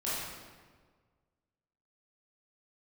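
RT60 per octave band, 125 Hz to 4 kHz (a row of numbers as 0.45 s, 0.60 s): 1.9 s, 1.7 s, 1.7 s, 1.5 s, 1.3 s, 1.1 s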